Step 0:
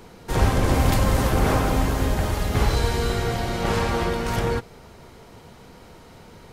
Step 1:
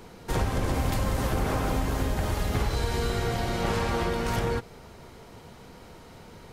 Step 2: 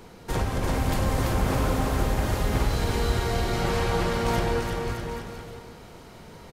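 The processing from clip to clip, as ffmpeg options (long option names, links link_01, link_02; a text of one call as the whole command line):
ffmpeg -i in.wav -af "acompressor=threshold=-21dB:ratio=6,volume=-1.5dB" out.wav
ffmpeg -i in.wav -af "aecho=1:1:340|612|829.6|1004|1143:0.631|0.398|0.251|0.158|0.1" out.wav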